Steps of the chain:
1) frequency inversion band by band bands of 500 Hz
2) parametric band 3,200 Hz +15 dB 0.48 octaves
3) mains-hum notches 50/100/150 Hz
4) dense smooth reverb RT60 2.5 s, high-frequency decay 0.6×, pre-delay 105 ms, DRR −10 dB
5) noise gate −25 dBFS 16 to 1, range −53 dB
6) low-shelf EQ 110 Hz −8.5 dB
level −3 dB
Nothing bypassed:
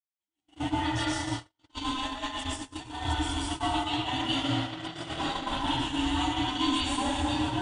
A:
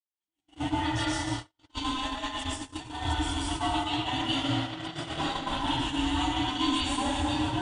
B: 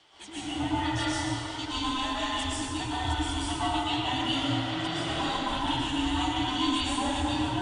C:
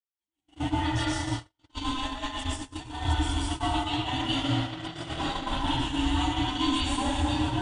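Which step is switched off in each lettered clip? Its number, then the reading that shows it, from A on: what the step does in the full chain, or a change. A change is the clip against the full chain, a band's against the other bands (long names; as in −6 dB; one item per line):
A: 3, change in momentary loudness spread −1 LU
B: 5, change in momentary loudness spread −4 LU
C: 6, 125 Hz band +4.5 dB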